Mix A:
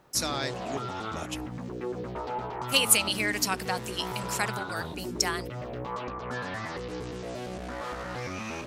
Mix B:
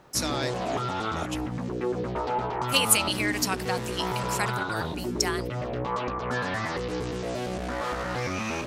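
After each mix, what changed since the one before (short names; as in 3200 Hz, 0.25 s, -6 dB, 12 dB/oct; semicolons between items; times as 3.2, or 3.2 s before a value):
background +5.5 dB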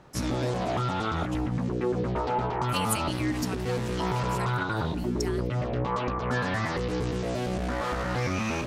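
speech -10.5 dB; background: add tone controls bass +5 dB, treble -1 dB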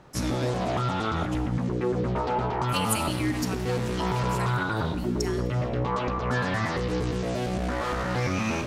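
reverb: on, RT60 1.2 s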